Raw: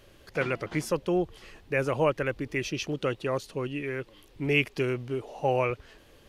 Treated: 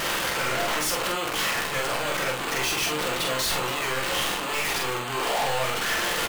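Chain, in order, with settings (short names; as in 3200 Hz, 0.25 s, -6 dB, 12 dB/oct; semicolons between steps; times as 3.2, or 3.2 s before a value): infinite clipping; HPF 1100 Hz 12 dB/oct; high shelf 5200 Hz -5 dB; sample leveller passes 5; vibrato 3.8 Hz 29 cents; soft clip -33.5 dBFS, distortion -15 dB; doubler 46 ms -3 dB; on a send: reverb RT60 0.30 s, pre-delay 6 ms, DRR 4.5 dB; on the sum: gain +6.5 dB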